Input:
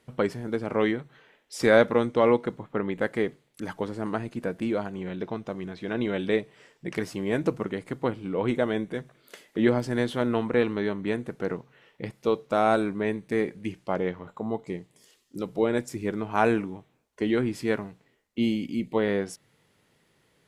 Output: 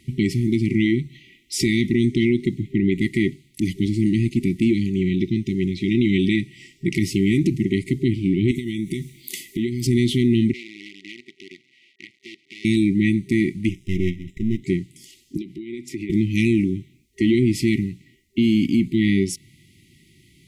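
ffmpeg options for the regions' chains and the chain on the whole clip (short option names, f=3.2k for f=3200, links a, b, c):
-filter_complex "[0:a]asettb=1/sr,asplit=3[a][b][c];[a]atrim=end=8.514[d];[b]atrim=start=8.51:end=9.87,asetpts=PTS-STARTPTS,afade=t=in:d=0.004:c=qsin,afade=t=out:st=1.356:d=0.004:c=qsin,aemphasis=mode=production:type=50kf,acompressor=threshold=-32dB:ratio=12:attack=3.2:release=140:knee=1:detection=peak[e];[c]atrim=start=9.866[f];[d][e]acrossfade=d=0.004:c1=hsin:c2=qsin[g];[g][f]acrossfade=d=0.004:c1=qsin:c2=hsin,asettb=1/sr,asplit=3[h][i][j];[h]atrim=end=10.534[k];[i]atrim=start=10.53:end=12.65,asetpts=PTS-STARTPTS,afade=t=in:d=0.004:c=qsin,afade=t=out:st=2.116:d=0.004:c=qsin,acompressor=threshold=-46dB:ratio=2:attack=3.2:release=140:knee=1:detection=peak,acrusher=bits=7:dc=4:mix=0:aa=0.000001,highpass=620,lowpass=2.9k[l];[j]atrim=start=12.646[m];[k][l]acrossfade=d=0.004:c1=hsin:c2=qsin[n];[n][m]acrossfade=d=0.004:c1=qsin:c2=hsin,asettb=1/sr,asplit=3[o][p][q];[o]atrim=end=13.694[r];[p]atrim=start=13.69:end=14.62,asetpts=PTS-STARTPTS,afade=t=in:d=0.004:c=qsin,afade=t=out:st=0.926:d=0.004:c=qsin,aeval=exprs='if(lt(val(0),0),0.251*val(0),val(0))':c=same,asuperstop=centerf=4400:order=4:qfactor=4.3[s];[q]atrim=start=14.616[t];[r][s]acrossfade=d=0.004:c1=hsin:c2=qsin[u];[u][t]acrossfade=d=0.004:c1=qsin:c2=hsin,asettb=1/sr,asplit=3[v][w][x];[v]atrim=end=15.374[y];[w]atrim=start=15.37:end=16.1,asetpts=PTS-STARTPTS,afade=t=in:d=0.004:c=qsin,afade=t=out:st=0.726:d=0.004:c=qsin,acrossover=split=250 3800:gain=0.178 1 0.224[z][aa][ab];[z][aa][ab]amix=inputs=3:normalize=0,acompressor=threshold=-36dB:ratio=10:attack=3.2:release=140:knee=1:detection=peak[ac];[x]atrim=start=16.096[ad];[y][ac]acrossfade=d=0.004:c1=hsin:c2=qsin[ae];[ae][ad]acrossfade=d=0.004:c1=qsin:c2=hsin,afftfilt=real='re*(1-between(b*sr/4096,390,1900))':imag='im*(1-between(b*sr/4096,390,1900))':win_size=4096:overlap=0.75,equalizer=f=67:t=o:w=2.3:g=6.5,alimiter=level_in=21dB:limit=-1dB:release=50:level=0:latency=1,volume=-9dB"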